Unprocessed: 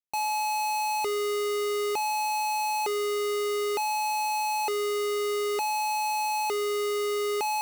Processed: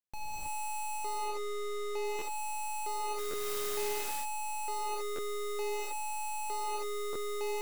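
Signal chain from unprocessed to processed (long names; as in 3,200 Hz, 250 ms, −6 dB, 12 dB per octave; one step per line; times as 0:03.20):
wavefolder on the positive side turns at −36.5 dBFS
0:00.97–0:02.05: high-shelf EQ 8,600 Hz −9 dB
0:03.17–0:03.91: background noise white −41 dBFS
reverb whose tail is shaped and stops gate 350 ms rising, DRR −6.5 dB
buffer that repeats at 0:02.18/0:03.30/0:05.15/0:07.12, samples 512, times 2
level −6.5 dB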